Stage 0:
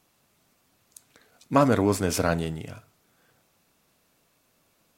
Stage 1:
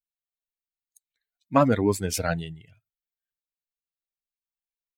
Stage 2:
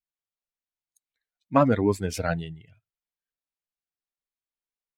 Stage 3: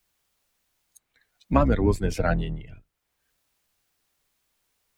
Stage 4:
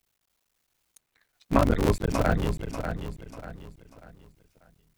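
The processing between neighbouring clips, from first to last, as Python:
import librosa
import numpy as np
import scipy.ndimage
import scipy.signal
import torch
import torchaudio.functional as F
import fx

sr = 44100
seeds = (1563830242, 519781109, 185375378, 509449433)

y1 = fx.bin_expand(x, sr, power=2.0)
y1 = F.gain(torch.from_numpy(y1), 2.5).numpy()
y2 = fx.high_shelf(y1, sr, hz=5300.0, db=-11.0)
y3 = fx.octave_divider(y2, sr, octaves=2, level_db=1.0)
y3 = fx.band_squash(y3, sr, depth_pct=70)
y4 = fx.cycle_switch(y3, sr, every=3, mode='muted')
y4 = fx.echo_feedback(y4, sr, ms=591, feedback_pct=35, wet_db=-7.5)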